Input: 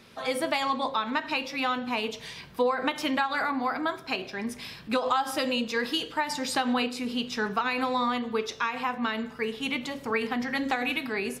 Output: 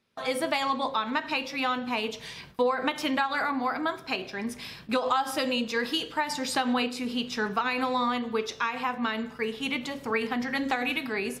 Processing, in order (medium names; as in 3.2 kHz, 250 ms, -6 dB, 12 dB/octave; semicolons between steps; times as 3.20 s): gate with hold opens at -34 dBFS